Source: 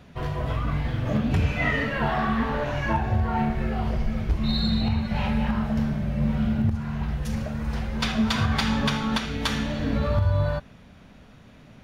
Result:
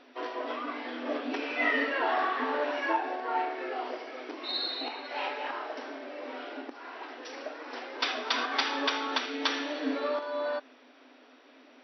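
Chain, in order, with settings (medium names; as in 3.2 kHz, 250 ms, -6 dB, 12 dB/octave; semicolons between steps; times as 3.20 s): FFT band-pass 240–5900 Hz; trim -1.5 dB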